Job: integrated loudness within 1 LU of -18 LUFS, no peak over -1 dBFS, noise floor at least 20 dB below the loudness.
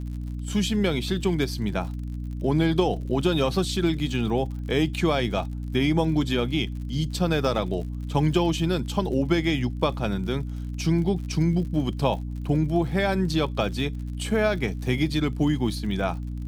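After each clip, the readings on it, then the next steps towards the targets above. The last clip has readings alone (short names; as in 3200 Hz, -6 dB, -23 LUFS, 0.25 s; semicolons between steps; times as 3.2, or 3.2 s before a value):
ticks 58/s; hum 60 Hz; harmonics up to 300 Hz; hum level -29 dBFS; loudness -25.5 LUFS; peak -7.5 dBFS; loudness target -18.0 LUFS
-> de-click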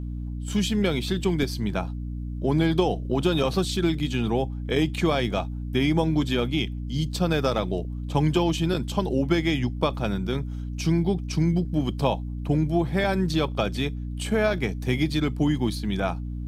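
ticks 0.061/s; hum 60 Hz; harmonics up to 300 Hz; hum level -29 dBFS
-> notches 60/120/180/240/300 Hz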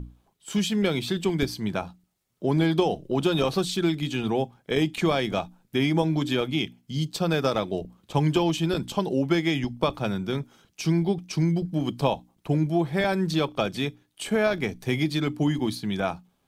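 hum none; loudness -26.0 LUFS; peak -8.0 dBFS; loudness target -18.0 LUFS
-> gain +8 dB; limiter -1 dBFS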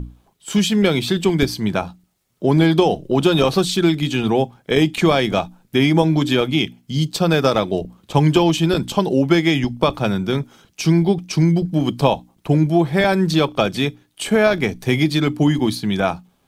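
loudness -18.0 LUFS; peak -1.0 dBFS; noise floor -62 dBFS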